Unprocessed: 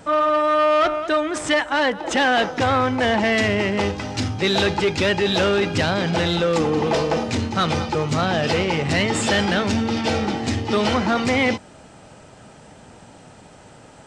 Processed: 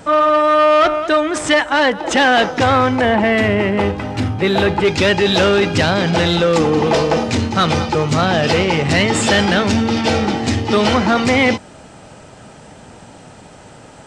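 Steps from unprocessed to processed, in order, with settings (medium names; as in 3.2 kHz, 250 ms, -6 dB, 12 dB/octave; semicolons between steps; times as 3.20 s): 3.01–4.85 s: peaking EQ 5.8 kHz -13 dB 1.5 oct; trim +5.5 dB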